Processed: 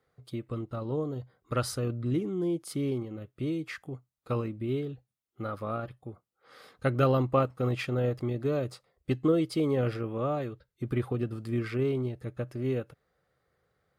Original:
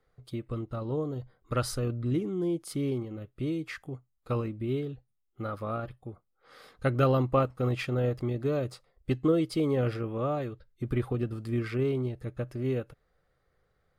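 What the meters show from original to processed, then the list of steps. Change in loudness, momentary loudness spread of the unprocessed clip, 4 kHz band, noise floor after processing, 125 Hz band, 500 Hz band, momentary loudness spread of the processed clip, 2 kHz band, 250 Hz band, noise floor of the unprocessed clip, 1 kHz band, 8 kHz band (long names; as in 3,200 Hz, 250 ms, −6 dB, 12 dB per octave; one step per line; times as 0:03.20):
0.0 dB, 14 LU, 0.0 dB, −82 dBFS, −1.0 dB, 0.0 dB, 14 LU, 0.0 dB, 0.0 dB, −75 dBFS, 0.0 dB, can't be measured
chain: high-pass filter 84 Hz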